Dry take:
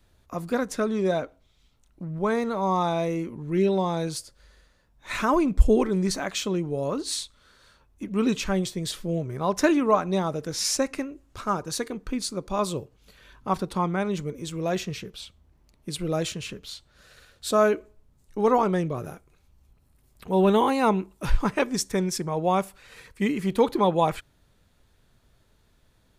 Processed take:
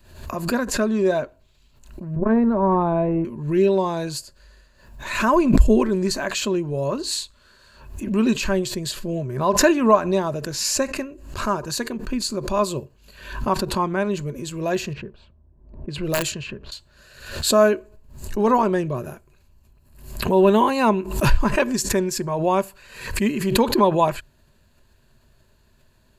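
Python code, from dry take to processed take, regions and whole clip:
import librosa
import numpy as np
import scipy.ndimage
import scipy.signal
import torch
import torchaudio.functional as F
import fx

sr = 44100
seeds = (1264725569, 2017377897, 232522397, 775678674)

y = fx.chain(x, sr, fx.lowpass(hz=1900.0, slope=12),
    fx.tilt_eq(slope=-3.0),
    fx.transformer_sat(knee_hz=200.0), at=(2.16, 3.25))
y = fx.chain(y, sr, fx.env_lowpass(base_hz=590.0, full_db=-23.0),
    fx.high_shelf(hz=10000.0, db=11.0),
    fx.overflow_wrap(gain_db=17.0), at=(14.93, 16.72))
y = fx.ripple_eq(y, sr, per_octave=1.4, db=8)
y = fx.pre_swell(y, sr, db_per_s=82.0)
y = F.gain(torch.from_numpy(y), 2.5).numpy()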